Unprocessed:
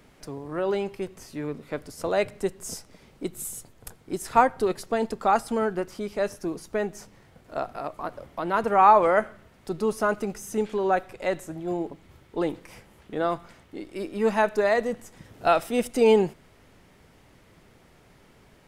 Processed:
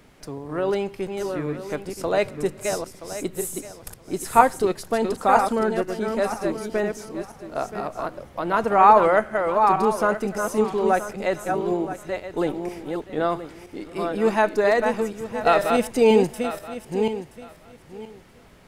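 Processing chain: backward echo that repeats 488 ms, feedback 41%, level -5 dB; trim +2.5 dB

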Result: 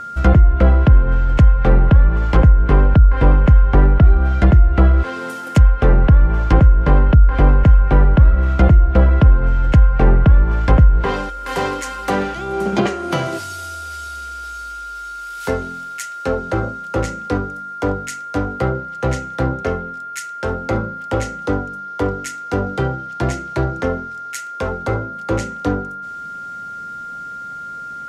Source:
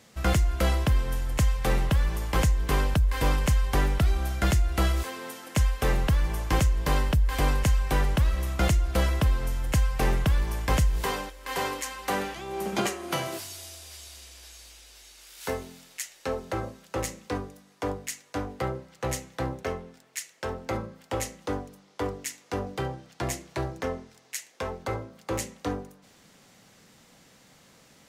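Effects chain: whistle 1.4 kHz -34 dBFS; tilt shelf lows +4.5 dB, about 710 Hz; low-pass that closes with the level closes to 1.5 kHz, closed at -16 dBFS; trim +9 dB

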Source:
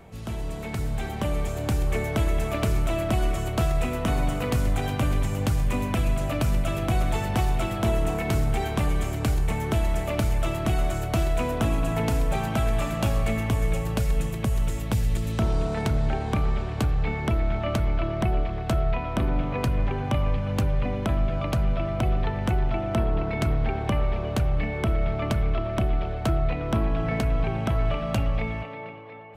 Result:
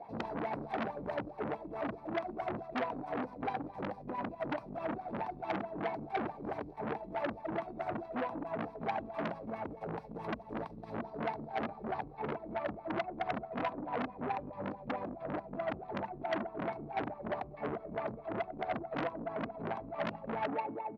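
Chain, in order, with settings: compressor with a negative ratio -30 dBFS, ratio -1; wah-wah 3.3 Hz 230–1200 Hz, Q 4.8; reverberation RT60 1.0 s, pre-delay 3 ms, DRR 21.5 dB; tempo 1.4×; transformer saturation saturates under 1.9 kHz

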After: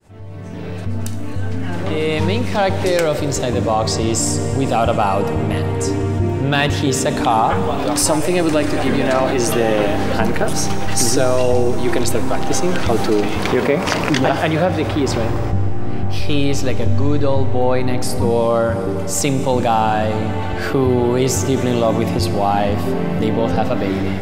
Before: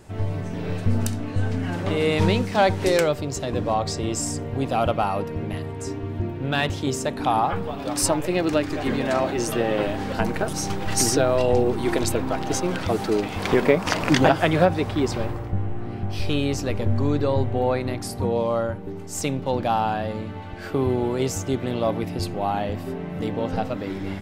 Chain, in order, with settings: fade-in on the opening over 5.23 s; level rider gain up to 7 dB; Schroeder reverb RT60 3.3 s, combs from 28 ms, DRR 13 dB; level flattener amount 50%; trim -3 dB

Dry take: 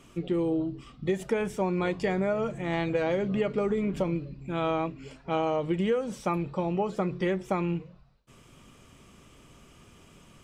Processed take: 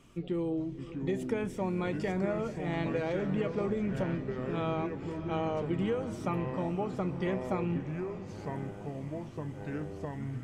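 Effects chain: tone controls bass +3 dB, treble -1 dB; echo that smears into a reverb 526 ms, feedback 62%, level -14.5 dB; ever faster or slower copies 572 ms, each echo -4 st, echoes 3, each echo -6 dB; trim -6 dB

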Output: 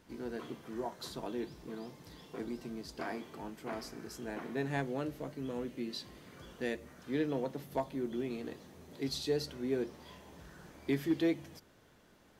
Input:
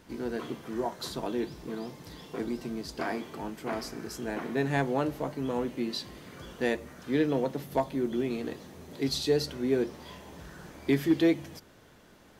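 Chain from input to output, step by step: 4.80–6.83 s: dynamic bell 890 Hz, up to -7 dB, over -48 dBFS, Q 1.7; trim -7 dB

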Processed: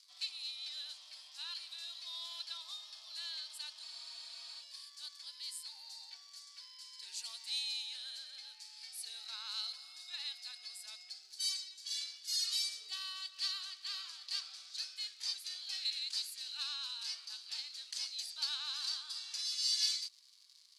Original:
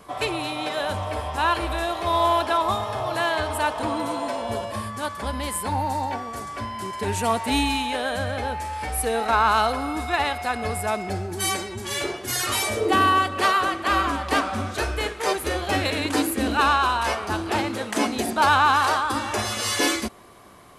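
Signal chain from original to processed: crackle 210 per s -35 dBFS; ladder band-pass 4.9 kHz, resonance 70%; spectral freeze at 3.85 s, 0.75 s

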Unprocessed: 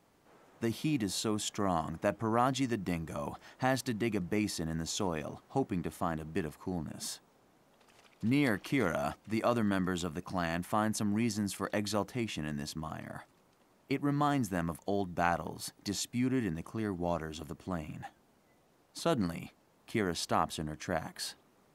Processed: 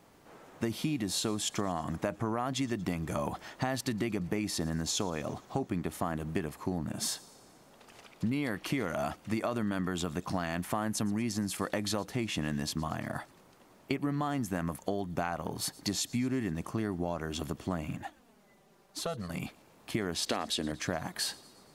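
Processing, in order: 20.26–20.72 s: graphic EQ 125/250/500/1000/2000/4000/8000 Hz -11/+6/+6/-4/+6/+11/+5 dB; in parallel at +2.5 dB: peak limiter -22.5 dBFS, peak gain reduction 10.5 dB; on the sum: compression 12:1, threshold -28 dBFS, peak gain reduction 11 dB; 17.96–19.30 s: touch-sensitive flanger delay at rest 5.3 ms, full sweep at -20 dBFS; on a send: feedback echo behind a high-pass 117 ms, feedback 62%, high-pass 2.8 kHz, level -21 dB

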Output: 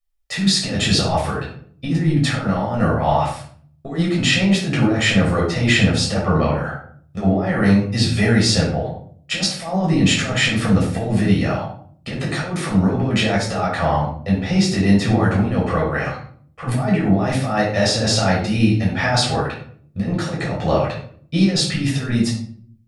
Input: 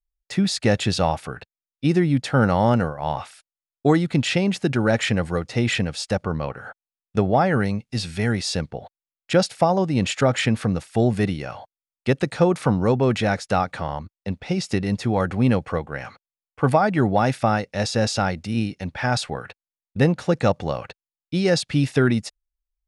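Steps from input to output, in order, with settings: bass shelf 190 Hz -6 dB; compressor with a negative ratio -24 dBFS, ratio -0.5; simulated room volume 640 m³, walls furnished, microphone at 6.2 m; trim -2 dB

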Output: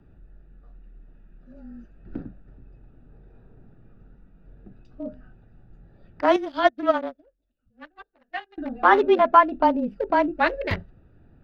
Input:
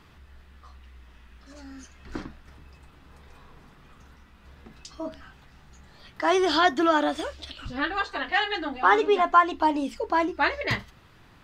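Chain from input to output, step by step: local Wiener filter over 41 samples; dynamic bell 580 Hz, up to +6 dB, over -41 dBFS, Q 2.7; frequency shift -25 Hz; peaking EQ 7.6 kHz -14 dB 0.99 oct; 6.36–8.58 s: upward expansion 2.5:1, over -37 dBFS; trim +3 dB

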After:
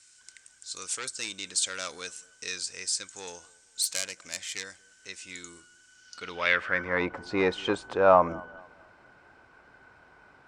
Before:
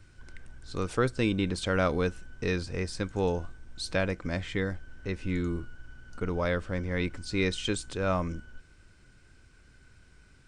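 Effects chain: 3.82–4.64 s: self-modulated delay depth 0.2 ms; sine folder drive 5 dB, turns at -12 dBFS; bucket-brigade echo 226 ms, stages 2048, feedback 35%, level -23.5 dB; band-pass sweep 7.5 kHz -> 830 Hz, 5.92–7.08 s; trim +9 dB

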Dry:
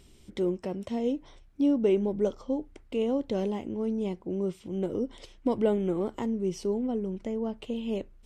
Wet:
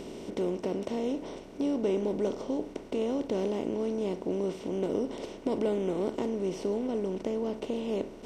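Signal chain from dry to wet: spectral levelling over time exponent 0.4; trim -7 dB

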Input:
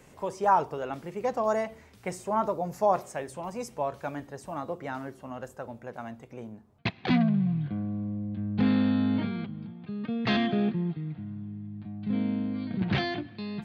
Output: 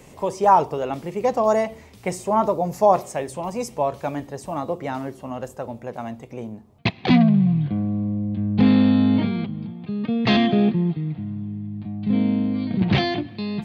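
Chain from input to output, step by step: peaking EQ 1.5 kHz -7.5 dB 0.53 oct; trim +8.5 dB

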